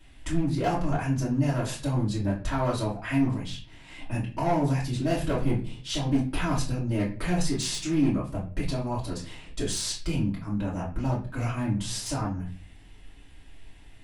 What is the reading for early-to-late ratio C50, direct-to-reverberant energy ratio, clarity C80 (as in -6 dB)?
8.0 dB, -7.5 dB, 13.5 dB